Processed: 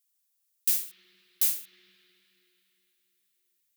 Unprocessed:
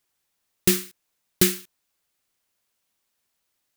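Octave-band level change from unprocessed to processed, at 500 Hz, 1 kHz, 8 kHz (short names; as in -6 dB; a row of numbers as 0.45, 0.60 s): under -30 dB, under -20 dB, -5.0 dB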